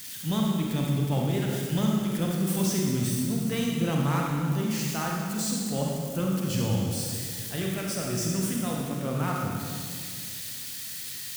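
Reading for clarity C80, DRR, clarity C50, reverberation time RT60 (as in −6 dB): 1.5 dB, −1.5 dB, −0.5 dB, 2.1 s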